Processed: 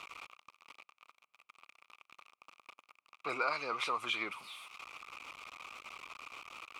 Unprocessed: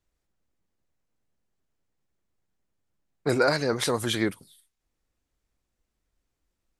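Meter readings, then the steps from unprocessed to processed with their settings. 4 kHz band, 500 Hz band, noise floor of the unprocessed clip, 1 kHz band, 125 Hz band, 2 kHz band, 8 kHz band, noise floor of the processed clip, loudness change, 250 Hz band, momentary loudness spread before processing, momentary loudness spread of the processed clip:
-8.5 dB, -16.5 dB, -82 dBFS, -3.5 dB, -28.0 dB, -6.0 dB, -17.0 dB, under -85 dBFS, -13.5 dB, -21.0 dB, 7 LU, 24 LU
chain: jump at every zero crossing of -36.5 dBFS; two resonant band-passes 1.7 kHz, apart 1 oct; compression 1.5:1, threshold -53 dBFS, peak gain reduction 8 dB; trim +10 dB

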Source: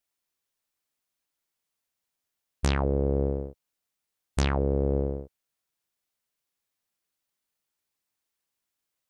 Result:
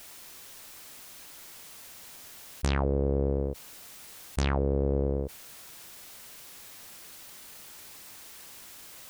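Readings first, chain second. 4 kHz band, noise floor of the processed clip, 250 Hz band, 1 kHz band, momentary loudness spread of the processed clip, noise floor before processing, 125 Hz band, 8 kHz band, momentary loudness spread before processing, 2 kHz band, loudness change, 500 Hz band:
0.0 dB, -48 dBFS, -1.0 dB, -1.0 dB, 17 LU, -85 dBFS, -1.0 dB, +4.5 dB, 10 LU, -0.5 dB, -6.0 dB, -1.0 dB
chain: level flattener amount 70%; trim -3.5 dB

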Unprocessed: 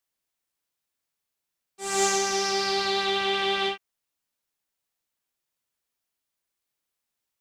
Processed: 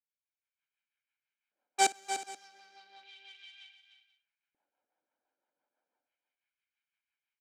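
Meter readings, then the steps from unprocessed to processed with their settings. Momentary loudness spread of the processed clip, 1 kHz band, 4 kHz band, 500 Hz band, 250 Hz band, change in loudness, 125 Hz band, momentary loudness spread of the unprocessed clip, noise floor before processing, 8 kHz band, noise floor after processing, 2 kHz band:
22 LU, -7.0 dB, -15.0 dB, -17.5 dB, -17.0 dB, -7.0 dB, under -20 dB, 7 LU, -84 dBFS, -8.5 dB, under -85 dBFS, -11.5 dB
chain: frequency weighting A; inverted gate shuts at -21 dBFS, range -42 dB; treble shelf 5.1 kHz -3 dB; band-stop 660 Hz, Q 12; comb 1.3 ms, depth 72%; waveshaping leveller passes 1; level rider gain up to 13 dB; LFO high-pass square 0.33 Hz 320–2400 Hz; rotary cabinet horn 6 Hz; level-controlled noise filter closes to 750 Hz, open at -48 dBFS; multi-tap echo 55/297/366/481 ms -20/-9.5/-19/-20 dB

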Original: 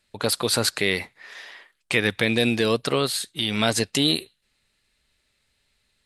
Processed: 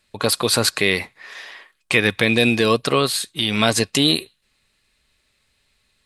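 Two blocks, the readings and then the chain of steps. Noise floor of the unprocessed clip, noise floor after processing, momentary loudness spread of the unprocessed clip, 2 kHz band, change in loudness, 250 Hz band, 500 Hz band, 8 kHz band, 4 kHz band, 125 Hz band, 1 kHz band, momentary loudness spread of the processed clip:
-71 dBFS, -67 dBFS, 9 LU, +5.0 dB, +4.5 dB, +4.0 dB, +4.0 dB, +4.0 dB, +4.0 dB, +4.0 dB, +6.0 dB, 9 LU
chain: small resonant body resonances 1.1/2.5 kHz, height 9 dB, ringing for 85 ms; trim +4 dB

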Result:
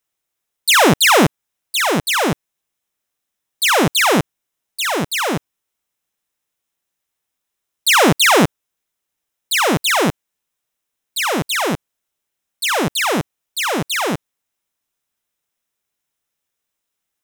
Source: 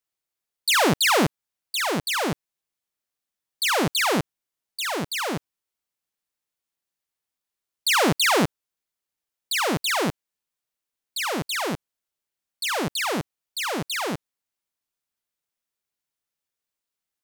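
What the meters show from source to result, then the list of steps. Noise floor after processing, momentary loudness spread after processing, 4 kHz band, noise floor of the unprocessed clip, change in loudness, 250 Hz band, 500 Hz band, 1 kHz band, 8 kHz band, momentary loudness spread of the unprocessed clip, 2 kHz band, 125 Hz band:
-79 dBFS, 12 LU, +7.0 dB, under -85 dBFS, +7.5 dB, +8.0 dB, +8.0 dB, +8.0 dB, +8.0 dB, 12 LU, +8.0 dB, +8.0 dB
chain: band-stop 4.5 kHz, Q 7.2; trim +8 dB

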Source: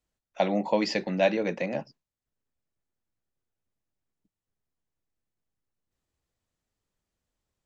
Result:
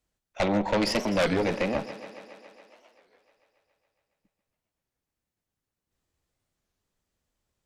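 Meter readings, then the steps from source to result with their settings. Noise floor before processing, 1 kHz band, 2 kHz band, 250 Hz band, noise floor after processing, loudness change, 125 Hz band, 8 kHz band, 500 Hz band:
under -85 dBFS, +1.0 dB, +2.5 dB, +2.0 dB, under -85 dBFS, +1.0 dB, +3.5 dB, no reading, 0.0 dB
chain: Chebyshev shaper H 5 -8 dB, 8 -12 dB, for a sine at -10.5 dBFS; thinning echo 139 ms, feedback 76%, high-pass 150 Hz, level -14 dB; warped record 33 1/3 rpm, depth 250 cents; trim -6.5 dB

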